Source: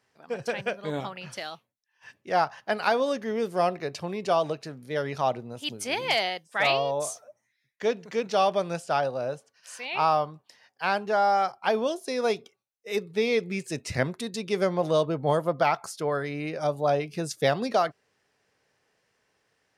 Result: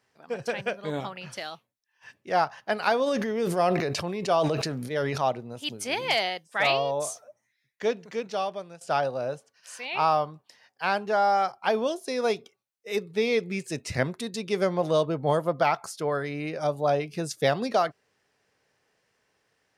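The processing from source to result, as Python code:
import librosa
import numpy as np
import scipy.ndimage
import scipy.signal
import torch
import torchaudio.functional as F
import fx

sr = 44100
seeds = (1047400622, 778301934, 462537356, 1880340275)

y = fx.sustainer(x, sr, db_per_s=29.0, at=(3.06, 5.18), fade=0.02)
y = fx.edit(y, sr, fx.fade_out_to(start_s=7.83, length_s=0.98, floor_db=-18.5), tone=tone)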